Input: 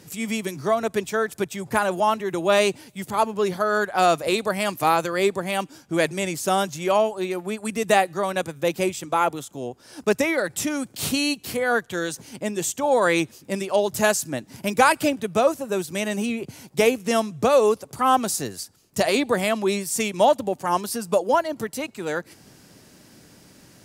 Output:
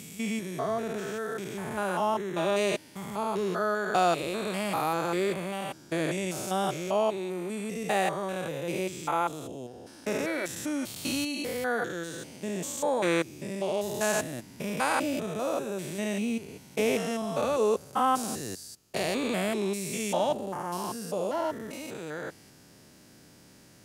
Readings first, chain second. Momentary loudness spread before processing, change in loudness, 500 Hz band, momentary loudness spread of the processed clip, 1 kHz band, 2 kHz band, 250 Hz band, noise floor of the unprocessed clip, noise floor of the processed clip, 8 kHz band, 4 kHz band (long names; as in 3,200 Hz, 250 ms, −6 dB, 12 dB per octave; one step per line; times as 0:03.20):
10 LU, −7.0 dB, −7.5 dB, 10 LU, −7.5 dB, −8.0 dB, −5.5 dB, −53 dBFS, −55 dBFS, −7.5 dB, −7.5 dB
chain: spectrum averaged block by block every 200 ms
level −3 dB